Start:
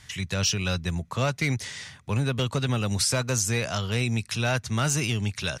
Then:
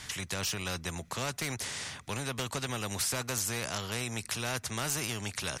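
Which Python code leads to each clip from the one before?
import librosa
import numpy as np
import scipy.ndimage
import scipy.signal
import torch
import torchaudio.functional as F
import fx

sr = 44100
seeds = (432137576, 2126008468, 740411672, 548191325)

y = fx.dynamic_eq(x, sr, hz=3700.0, q=0.78, threshold_db=-41.0, ratio=4.0, max_db=-6)
y = fx.spectral_comp(y, sr, ratio=2.0)
y = y * 10.0 ** (-1.0 / 20.0)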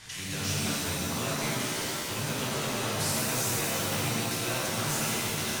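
y = fx.rev_shimmer(x, sr, seeds[0], rt60_s=2.3, semitones=7, shimmer_db=-2, drr_db=-6.5)
y = y * 10.0 ** (-5.5 / 20.0)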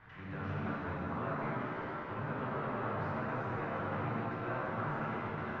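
y = fx.ladder_lowpass(x, sr, hz=1700.0, resonance_pct=35)
y = y * 10.0 ** (2.0 / 20.0)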